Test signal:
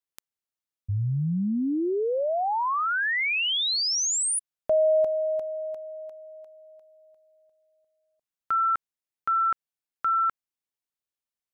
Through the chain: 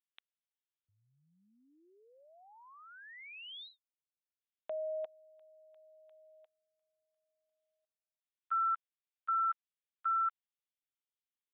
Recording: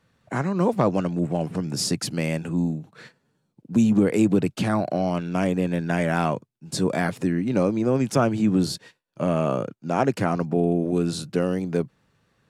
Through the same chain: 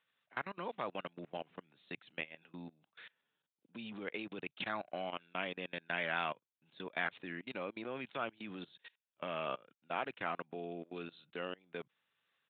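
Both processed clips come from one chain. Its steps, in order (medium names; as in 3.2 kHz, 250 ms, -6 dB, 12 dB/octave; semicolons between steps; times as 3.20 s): level held to a coarse grid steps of 24 dB; differentiator; resampled via 8 kHz; trim +7.5 dB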